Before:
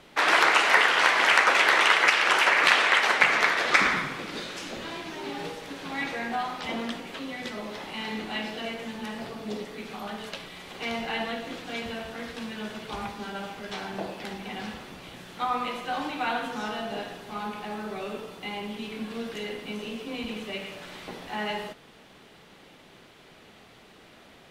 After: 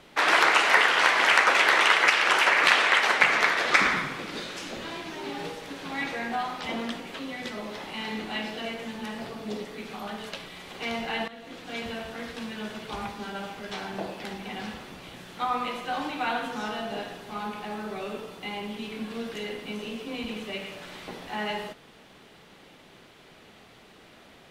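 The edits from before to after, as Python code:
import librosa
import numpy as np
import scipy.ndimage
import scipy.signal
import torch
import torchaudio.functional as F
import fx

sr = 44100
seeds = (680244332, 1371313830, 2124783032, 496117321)

y = fx.edit(x, sr, fx.fade_in_from(start_s=11.28, length_s=0.55, floor_db=-15.5), tone=tone)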